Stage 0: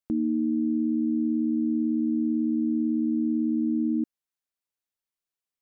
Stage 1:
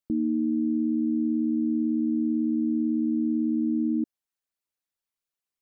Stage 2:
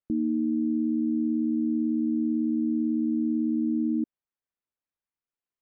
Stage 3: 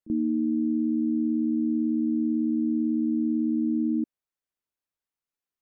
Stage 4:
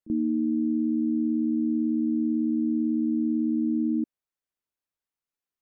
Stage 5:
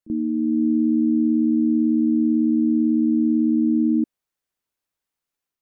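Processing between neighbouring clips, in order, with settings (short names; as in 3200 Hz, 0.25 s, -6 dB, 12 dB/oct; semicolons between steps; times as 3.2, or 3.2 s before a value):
formant sharpening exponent 1.5
air absorption 470 m
reverse echo 35 ms -18 dB
nothing audible
AGC gain up to 5 dB; gain +1.5 dB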